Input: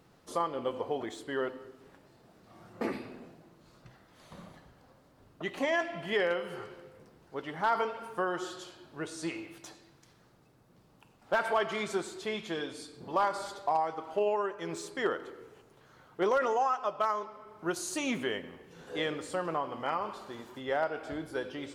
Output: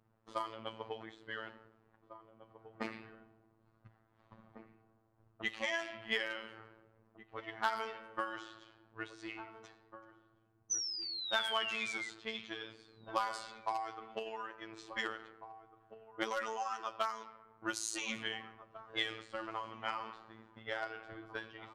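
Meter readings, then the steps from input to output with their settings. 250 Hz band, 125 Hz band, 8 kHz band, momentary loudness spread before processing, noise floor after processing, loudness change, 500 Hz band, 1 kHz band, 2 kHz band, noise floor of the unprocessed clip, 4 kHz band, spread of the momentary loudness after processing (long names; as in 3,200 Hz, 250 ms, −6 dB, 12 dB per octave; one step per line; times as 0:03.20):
−11.0 dB, −11.0 dB, +1.5 dB, 17 LU, −72 dBFS, −6.5 dB, −12.5 dB, −8.0 dB, −2.5 dB, −63 dBFS, +2.0 dB, 21 LU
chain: sound drawn into the spectrogram fall, 0:10.70–0:12.09, 2,000–6,100 Hz −37 dBFS
guitar amp tone stack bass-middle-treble 5-5-5
transient designer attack +8 dB, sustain +4 dB
low-pass that shuts in the quiet parts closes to 880 Hz, open at −37 dBFS
phases set to zero 111 Hz
slap from a distant wall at 300 metres, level −12 dB
level +7 dB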